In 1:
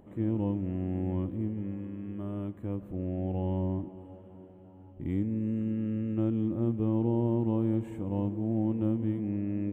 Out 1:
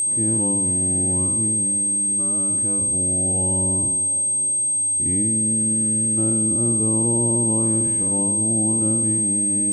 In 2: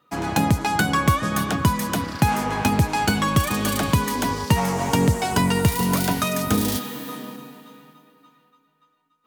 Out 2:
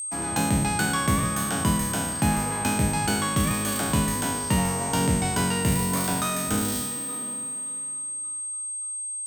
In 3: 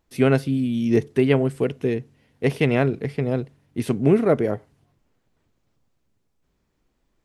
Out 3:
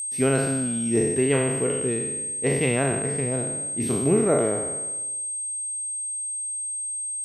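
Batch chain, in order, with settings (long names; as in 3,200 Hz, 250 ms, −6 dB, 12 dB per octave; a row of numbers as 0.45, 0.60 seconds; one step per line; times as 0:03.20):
peak hold with a decay on every bin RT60 1.15 s
steady tone 8,400 Hz −22 dBFS
mains-hum notches 50/100/150 Hz
normalise the peak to −9 dBFS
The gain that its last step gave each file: +4.0, −7.5, −5.5 decibels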